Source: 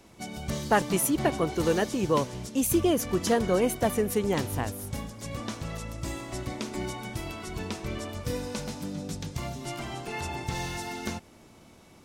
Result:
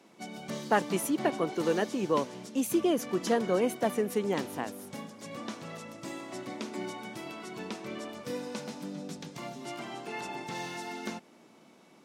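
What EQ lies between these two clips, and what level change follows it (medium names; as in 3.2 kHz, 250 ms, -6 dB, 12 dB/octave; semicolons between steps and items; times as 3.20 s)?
high-pass 180 Hz 24 dB/octave; treble shelf 6.5 kHz -8 dB; -2.5 dB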